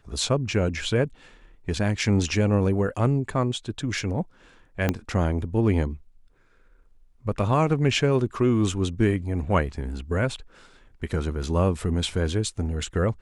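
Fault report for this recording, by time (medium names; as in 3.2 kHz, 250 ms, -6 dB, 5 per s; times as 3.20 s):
4.89 s: pop -9 dBFS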